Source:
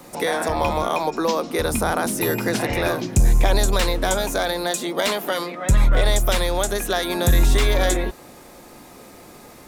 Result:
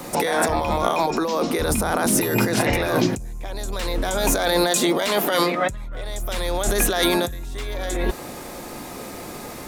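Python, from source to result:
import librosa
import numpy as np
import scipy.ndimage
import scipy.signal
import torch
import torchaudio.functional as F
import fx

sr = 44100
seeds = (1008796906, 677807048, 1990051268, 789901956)

y = fx.over_compress(x, sr, threshold_db=-26.0, ratio=-1.0)
y = y * 10.0 ** (3.0 / 20.0)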